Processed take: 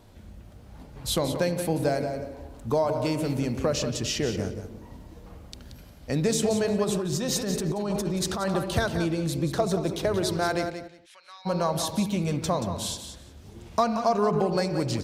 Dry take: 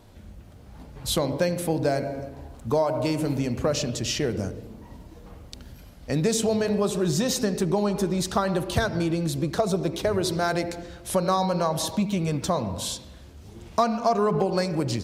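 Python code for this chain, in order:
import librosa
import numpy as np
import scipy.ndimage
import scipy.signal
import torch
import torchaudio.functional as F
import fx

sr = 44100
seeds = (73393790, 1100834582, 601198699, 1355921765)

y = fx.ladder_bandpass(x, sr, hz=2700.0, resonance_pct=35, at=(10.69, 11.45), fade=0.02)
y = fx.echo_feedback(y, sr, ms=179, feedback_pct=17, wet_db=-9.5)
y = fx.over_compress(y, sr, threshold_db=-26.0, ratio=-1.0, at=(6.84, 8.49))
y = y * librosa.db_to_amplitude(-1.5)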